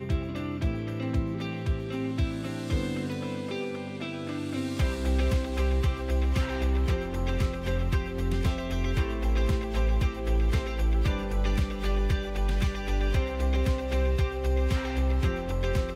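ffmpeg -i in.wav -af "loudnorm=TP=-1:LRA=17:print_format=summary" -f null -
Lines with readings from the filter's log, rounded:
Input Integrated:    -29.0 LUFS
Input True Peak:     -16.2 dBTP
Input LRA:             3.0 LU
Input Threshold:     -39.0 LUFS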